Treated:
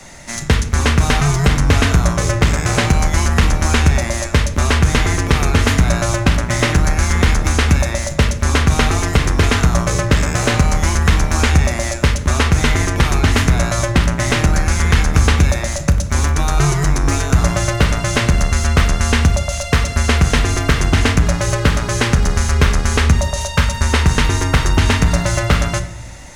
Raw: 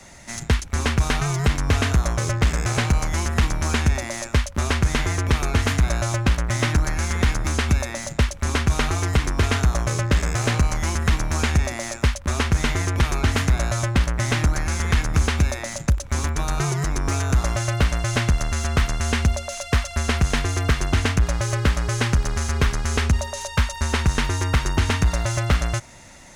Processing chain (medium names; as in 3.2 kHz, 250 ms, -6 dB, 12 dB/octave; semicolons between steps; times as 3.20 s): hum notches 60/120 Hz; simulated room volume 150 m³, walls mixed, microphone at 0.39 m; trim +6.5 dB